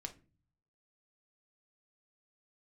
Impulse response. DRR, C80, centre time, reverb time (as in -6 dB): 4.0 dB, 22.5 dB, 7 ms, not exponential